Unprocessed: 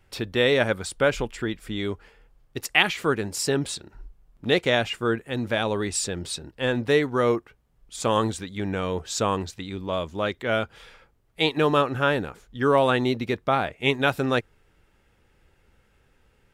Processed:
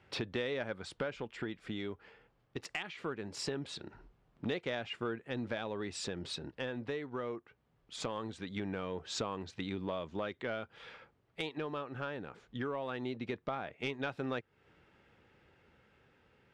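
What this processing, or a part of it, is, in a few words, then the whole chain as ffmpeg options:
AM radio: -af "highpass=110,lowpass=3900,acompressor=threshold=0.0178:ratio=6,asoftclip=type=tanh:threshold=0.0708,tremolo=f=0.21:d=0.27,volume=1.12"

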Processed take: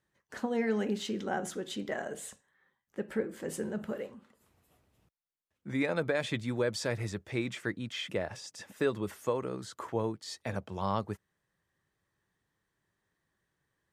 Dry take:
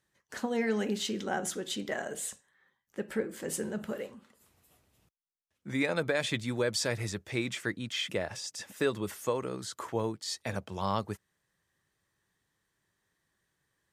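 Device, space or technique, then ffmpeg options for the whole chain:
behind a face mask: -af "highshelf=f=2700:g=-8"

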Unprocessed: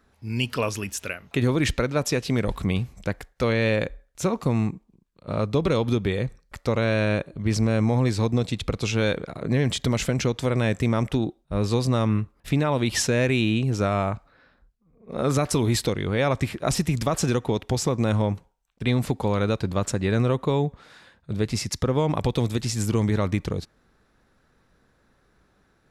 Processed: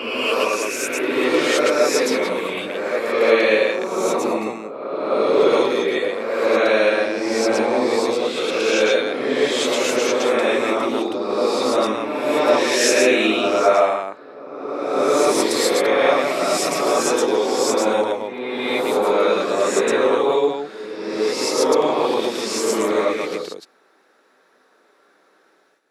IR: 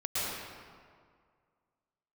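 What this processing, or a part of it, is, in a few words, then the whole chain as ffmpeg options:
ghost voice: -filter_complex "[0:a]areverse[s0];[1:a]atrim=start_sample=2205[s1];[s0][s1]afir=irnorm=-1:irlink=0,areverse,highpass=f=320:w=0.5412,highpass=f=320:w=1.3066,volume=1.19"

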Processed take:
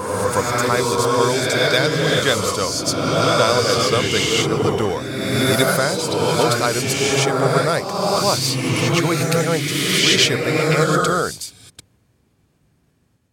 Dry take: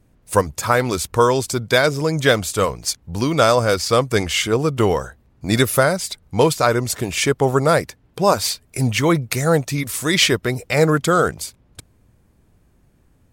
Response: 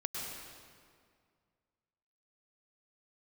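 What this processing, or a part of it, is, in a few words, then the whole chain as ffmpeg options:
reverse reverb: -filter_complex "[0:a]agate=range=0.0224:threshold=0.00224:ratio=3:detection=peak,highpass=86,equalizer=f=4400:w=0.61:g=6,areverse[s0];[1:a]atrim=start_sample=2205[s1];[s0][s1]afir=irnorm=-1:irlink=0,areverse,volume=0.708"

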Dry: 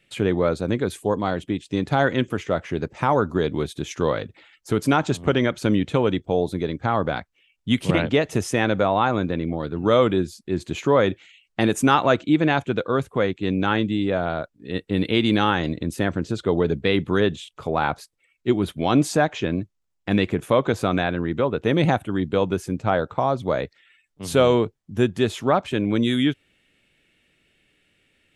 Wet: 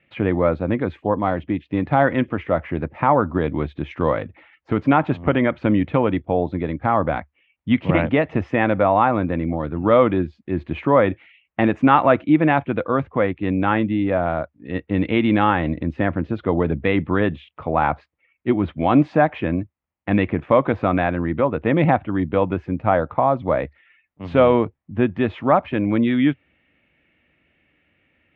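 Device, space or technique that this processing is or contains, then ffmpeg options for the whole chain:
bass cabinet: -af "highpass=65,equalizer=f=72:t=q:w=4:g=5,equalizer=f=120:t=q:w=4:g=-6,equalizer=f=190:t=q:w=4:g=-4,equalizer=f=410:t=q:w=4:g=-9,equalizer=f=1500:t=q:w=4:g=-5,lowpass=f=2300:w=0.5412,lowpass=f=2300:w=1.3066,volume=1.78"

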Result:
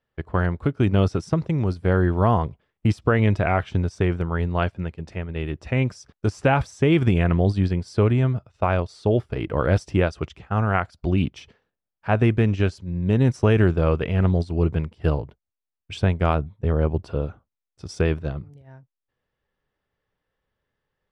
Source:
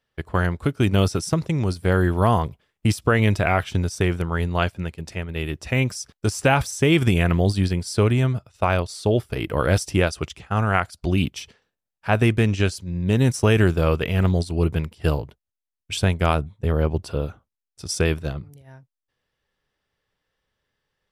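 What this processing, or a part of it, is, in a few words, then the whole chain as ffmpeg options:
through cloth: -af "lowpass=7200,highshelf=f=3000:g=-13.5"

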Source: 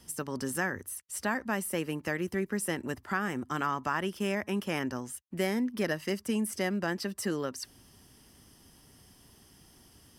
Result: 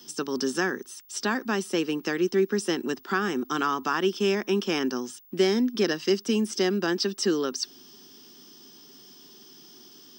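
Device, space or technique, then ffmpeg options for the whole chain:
old television with a line whistle: -af "highpass=f=200:w=0.5412,highpass=f=200:w=1.3066,equalizer=f=380:t=q:w=4:g=6,equalizer=f=600:t=q:w=4:g=-10,equalizer=f=910:t=q:w=4:g=-4,equalizer=f=2000:t=q:w=4:g=-8,equalizer=f=3600:t=q:w=4:g=8,equalizer=f=5500:t=q:w=4:g=8,lowpass=f=7000:w=0.5412,lowpass=f=7000:w=1.3066,aeval=exprs='val(0)+0.00112*sin(2*PI*15625*n/s)':c=same,volume=2.11"

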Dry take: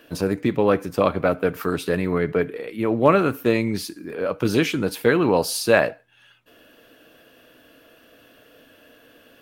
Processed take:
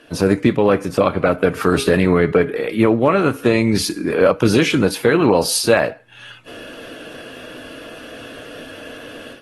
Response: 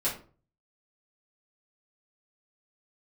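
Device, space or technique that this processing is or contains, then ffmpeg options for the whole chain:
low-bitrate web radio: -filter_complex "[0:a]asettb=1/sr,asplit=3[s0][s1][s2];[s0]atrim=end=1.554[s3];[s1]atrim=start=1.55:end=3.2,asetpts=PTS-STARTPTS,afade=t=in:d=0.004:c=qsin,afade=t=out:st=1.646:d=0.004:c=qsin,bandreject=f=410:t=h:w=4,bandreject=f=820:t=h:w=4,bandreject=f=1230:t=h:w=4,bandreject=f=1640:t=h:w=4,bandreject=f=2050:t=h:w=4,bandreject=f=2460:t=h:w=4,bandreject=f=2870:t=h:w=4,bandreject=f=3280:t=h:w=4,bandreject=f=3690:t=h:w=4,bandreject=f=4100:t=h:w=4,bandreject=f=4510:t=h:w=4[s4];[s2]atrim=start=3.196[s5];[s3][s4]acrossfade=d=0.004:c1=hsin:c2=qsin[s6];[s6][s5]acrossfade=d=0.004:c1=qsin:c2=hsin,dynaudnorm=f=150:g=3:m=4.47,alimiter=limit=0.501:level=0:latency=1:release=195,volume=1.41" -ar 32000 -c:a aac -b:a 32k

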